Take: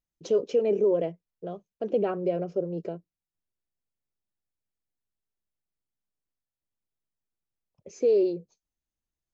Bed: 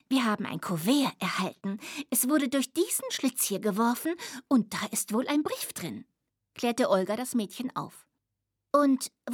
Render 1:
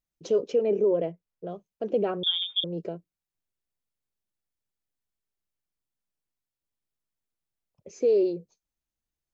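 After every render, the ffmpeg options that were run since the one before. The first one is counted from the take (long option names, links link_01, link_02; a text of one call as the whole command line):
ffmpeg -i in.wav -filter_complex "[0:a]asettb=1/sr,asplit=3[link_01][link_02][link_03];[link_01]atrim=end=0.524[link_04];[link_02]atrim=start=0.52:end=1.49,asetpts=PTS-STARTPTS,afade=type=in:duration=0.004:curve=qsin,afade=type=out:start_time=0.966:duration=0.004:curve=qsin,highshelf=frequency=4000:gain=-7[link_05];[link_03]atrim=start=1.486[link_06];[link_04][link_05]acrossfade=duration=0.004:curve1=hsin:curve2=qsin[link_07];[link_07][link_06]acrossfade=duration=0.004:curve1=qsin:curve2=hsin,asettb=1/sr,asplit=3[link_08][link_09][link_10];[link_08]atrim=end=2.234[link_11];[link_09]atrim=start=2.23:end=2.64,asetpts=PTS-STARTPTS,afade=type=in:duration=0.004:curve=qsin,afade=type=out:start_time=0.406:duration=0.004:curve=qsin,lowpass=frequency=3200:width_type=q:width=0.5098,lowpass=frequency=3200:width_type=q:width=0.6013,lowpass=frequency=3200:width_type=q:width=0.9,lowpass=frequency=3200:width_type=q:width=2.563,afreqshift=-3800[link_12];[link_10]atrim=start=2.636[link_13];[link_11][link_12]acrossfade=duration=0.004:curve1=hsin:curve2=qsin[link_14];[link_14][link_13]acrossfade=duration=0.004:curve1=qsin:curve2=hsin" out.wav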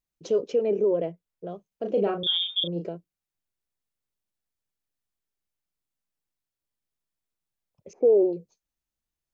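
ffmpeg -i in.wav -filter_complex "[0:a]asettb=1/sr,asplit=3[link_01][link_02][link_03];[link_01]atrim=end=1.684[link_04];[link_02]atrim=start=1.68:end=2.88,asetpts=PTS-STARTPTS,afade=type=in:duration=0.004:curve=qsin,afade=type=out:start_time=1.196:duration=0.004:curve=qsin,asplit=2[link_05][link_06];[link_06]adelay=35,volume=-5dB[link_07];[link_05][link_07]amix=inputs=2:normalize=0,atrim=end_sample=52920[link_08];[link_03]atrim=start=2.876[link_09];[link_04][link_08]acrossfade=duration=0.004:curve1=hsin:curve2=qsin[link_10];[link_10][link_09]acrossfade=duration=0.004:curve1=qsin:curve2=hsin,asettb=1/sr,asplit=3[link_11][link_12][link_13];[link_11]atrim=end=7.934[link_14];[link_12]atrim=start=7.93:end=8.33,asetpts=PTS-STARTPTS,afade=type=in:duration=0.004:curve=qsin,afade=type=out:start_time=0.396:duration=0.004:curve=qsin,lowpass=frequency=810:width_type=q:width=5.1[link_15];[link_13]atrim=start=8.326[link_16];[link_14][link_15]acrossfade=duration=0.004:curve1=hsin:curve2=qsin[link_17];[link_17][link_16]acrossfade=duration=0.004:curve1=qsin:curve2=hsin" out.wav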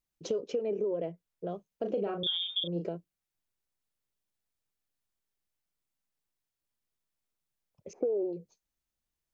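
ffmpeg -i in.wav -af "acompressor=threshold=-29dB:ratio=6" out.wav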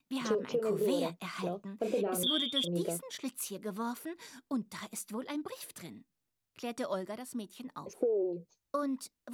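ffmpeg -i in.wav -i bed.wav -filter_complex "[1:a]volume=-11dB[link_01];[0:a][link_01]amix=inputs=2:normalize=0" out.wav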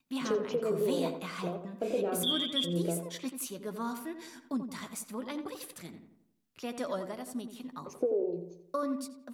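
ffmpeg -i in.wav -filter_complex "[0:a]asplit=2[link_01][link_02];[link_02]adelay=12,volume=-12dB[link_03];[link_01][link_03]amix=inputs=2:normalize=0,asplit=2[link_04][link_05];[link_05]adelay=87,lowpass=frequency=1900:poles=1,volume=-8dB,asplit=2[link_06][link_07];[link_07]adelay=87,lowpass=frequency=1900:poles=1,volume=0.49,asplit=2[link_08][link_09];[link_09]adelay=87,lowpass=frequency=1900:poles=1,volume=0.49,asplit=2[link_10][link_11];[link_11]adelay=87,lowpass=frequency=1900:poles=1,volume=0.49,asplit=2[link_12][link_13];[link_13]adelay=87,lowpass=frequency=1900:poles=1,volume=0.49,asplit=2[link_14][link_15];[link_15]adelay=87,lowpass=frequency=1900:poles=1,volume=0.49[link_16];[link_06][link_08][link_10][link_12][link_14][link_16]amix=inputs=6:normalize=0[link_17];[link_04][link_17]amix=inputs=2:normalize=0" out.wav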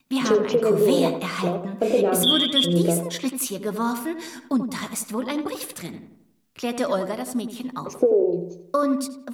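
ffmpeg -i in.wav -af "volume=11.5dB" out.wav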